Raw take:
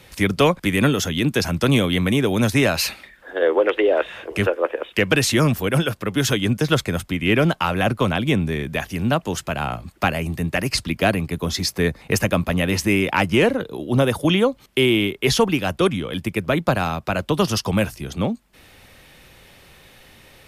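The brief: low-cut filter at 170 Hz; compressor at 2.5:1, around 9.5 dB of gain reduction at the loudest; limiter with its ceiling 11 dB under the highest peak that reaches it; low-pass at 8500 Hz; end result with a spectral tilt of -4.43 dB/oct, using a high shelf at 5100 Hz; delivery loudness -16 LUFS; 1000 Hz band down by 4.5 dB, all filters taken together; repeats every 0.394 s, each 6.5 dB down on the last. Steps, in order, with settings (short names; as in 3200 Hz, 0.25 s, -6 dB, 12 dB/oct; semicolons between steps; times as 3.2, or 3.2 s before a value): HPF 170 Hz; LPF 8500 Hz; bell 1000 Hz -6.5 dB; high shelf 5100 Hz +3.5 dB; compressor 2.5:1, threshold -29 dBFS; limiter -21.5 dBFS; feedback echo 0.394 s, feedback 47%, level -6.5 dB; gain +15 dB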